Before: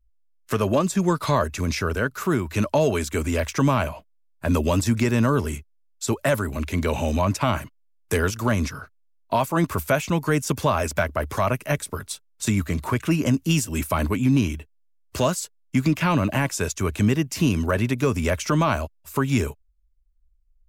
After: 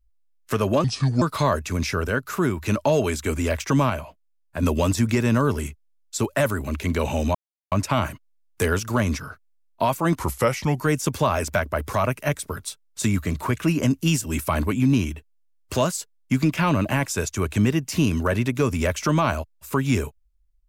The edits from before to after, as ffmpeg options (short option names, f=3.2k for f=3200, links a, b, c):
-filter_complex "[0:a]asplit=8[a][b][c][d][e][f][g][h];[a]atrim=end=0.844[i];[b]atrim=start=0.84:end=1.1,asetpts=PTS-STARTPTS,asetrate=30429,aresample=44100,atrim=end_sample=16617,asetpts=PTS-STARTPTS[j];[c]atrim=start=1.096:end=3.782[k];[d]atrim=start=3.778:end=4.512,asetpts=PTS-STARTPTS,volume=-3.5dB[l];[e]atrim=start=4.508:end=7.23,asetpts=PTS-STARTPTS,afade=t=out:st=2.718:d=0.004:c=hsin,apad=pad_dur=0.37[m];[f]atrim=start=7.23:end=9.684,asetpts=PTS-STARTPTS,afade=t=in:d=0.004:c=hsin[n];[g]atrim=start=9.68:end=10.22,asetpts=PTS-STARTPTS,asetrate=38367,aresample=44100,atrim=end_sample=27372,asetpts=PTS-STARTPTS[o];[h]atrim=start=10.216[p];[i][j]acrossfade=d=0.004:c1=hsin:c2=hsin[q];[q][k]acrossfade=d=0.004:c1=hsin:c2=hsin[r];[r][l]acrossfade=d=0.004:c1=hsin:c2=hsin[s];[m][n]concat=n=2:v=0:a=1[t];[s][t]acrossfade=d=0.004:c1=hsin:c2=hsin[u];[u][o]acrossfade=d=0.004:c1=hsin:c2=hsin[v];[v][p]acrossfade=d=0.004:c1=hsin:c2=hsin"